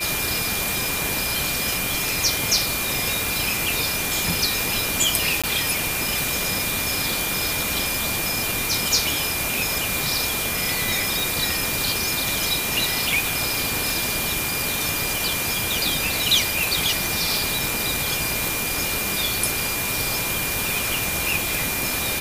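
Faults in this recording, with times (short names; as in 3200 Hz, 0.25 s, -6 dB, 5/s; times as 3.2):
tone 2400 Hz -29 dBFS
5.42–5.44 gap 16 ms
11.2 pop
17.37 pop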